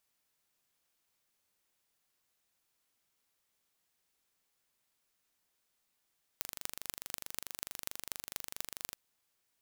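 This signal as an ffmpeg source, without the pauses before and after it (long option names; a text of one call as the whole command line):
ffmpeg -f lavfi -i "aevalsrc='0.398*eq(mod(n,1793),0)*(0.5+0.5*eq(mod(n,10758),0))':duration=2.53:sample_rate=44100" out.wav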